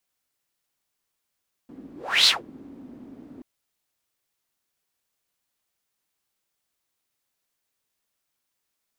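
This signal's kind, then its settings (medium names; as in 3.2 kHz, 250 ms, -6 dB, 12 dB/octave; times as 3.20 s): whoosh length 1.73 s, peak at 0.58 s, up 0.34 s, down 0.17 s, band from 270 Hz, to 4.2 kHz, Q 6, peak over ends 28.5 dB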